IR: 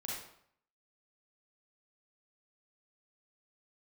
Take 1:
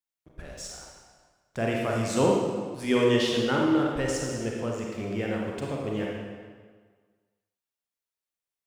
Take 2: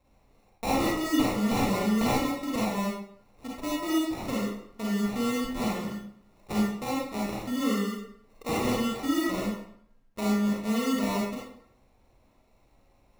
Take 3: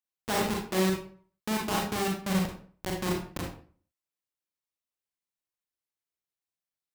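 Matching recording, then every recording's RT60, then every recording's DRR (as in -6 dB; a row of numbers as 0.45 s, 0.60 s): 2; 1.6 s, 0.65 s, 0.45 s; -2.0 dB, -5.5 dB, -1.5 dB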